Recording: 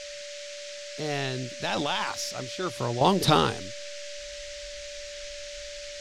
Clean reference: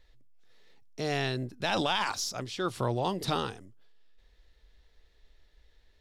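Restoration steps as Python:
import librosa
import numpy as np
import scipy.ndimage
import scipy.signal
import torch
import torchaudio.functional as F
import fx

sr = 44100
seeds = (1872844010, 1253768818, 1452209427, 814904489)

y = fx.notch(x, sr, hz=580.0, q=30.0)
y = fx.noise_reduce(y, sr, print_start_s=0.0, print_end_s=0.5, reduce_db=23.0)
y = fx.gain(y, sr, db=fx.steps((0.0, 0.0), (3.01, -9.5)))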